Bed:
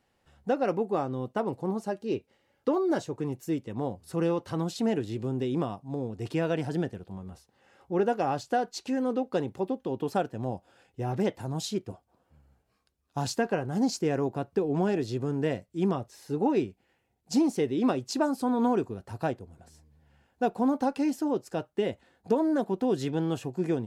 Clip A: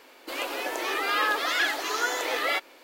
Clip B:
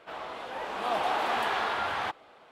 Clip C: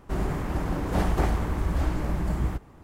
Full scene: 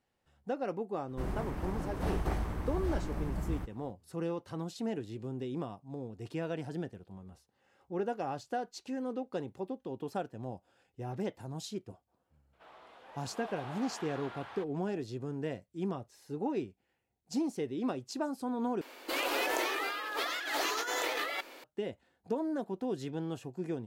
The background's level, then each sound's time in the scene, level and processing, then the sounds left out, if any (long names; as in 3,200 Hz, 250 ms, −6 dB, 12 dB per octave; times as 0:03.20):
bed −8.5 dB
0:01.08: mix in C −9 dB + notch filter 7,000 Hz, Q 14
0:12.53: mix in B −17 dB
0:18.81: overwrite with A −2.5 dB + compressor whose output falls as the input rises −32 dBFS